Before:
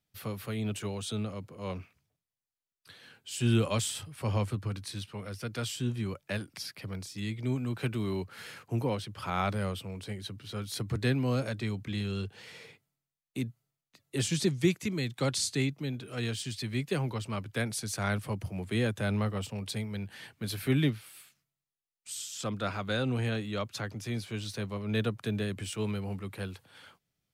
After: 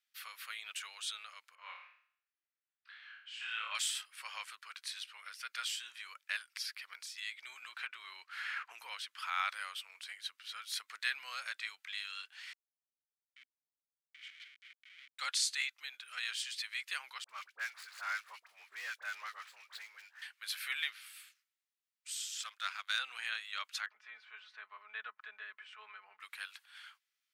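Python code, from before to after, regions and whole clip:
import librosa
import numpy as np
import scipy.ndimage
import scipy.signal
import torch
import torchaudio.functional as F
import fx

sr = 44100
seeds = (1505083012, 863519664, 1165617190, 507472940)

y = fx.chain(x, sr, fx.bandpass_edges(low_hz=540.0, high_hz=2200.0),
    fx.room_flutter(wall_m=4.7, rt60_s=0.54), at=(1.55, 3.75))
y = fx.chain(y, sr, fx.lowpass(hz=3100.0, slope=6),
    fx.band_squash(depth_pct=100), at=(7.62, 8.8))
y = fx.chain(y, sr, fx.schmitt(flips_db=-32.5),
    fx.vowel_filter(vowel='i'), at=(12.53, 15.19))
y = fx.chain(y, sr, fx.median_filter(points=15),
    fx.dispersion(late='highs', ms=52.0, hz=1200.0), at=(17.24, 20.22))
y = fx.chain(y, sr, fx.highpass(hz=340.0, slope=12),
    fx.high_shelf(hz=3400.0, db=7.0),
    fx.power_curve(exponent=1.4), at=(22.42, 22.99))
y = fx.chain(y, sr, fx.lowpass(hz=1300.0, slope=12),
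    fx.comb(ms=4.7, depth=0.67), at=(23.86, 26.2))
y = scipy.signal.sosfilt(scipy.signal.butter(4, 1400.0, 'highpass', fs=sr, output='sos'), y)
y = fx.high_shelf(y, sr, hz=4800.0, db=-8.0)
y = y * librosa.db_to_amplitude(3.5)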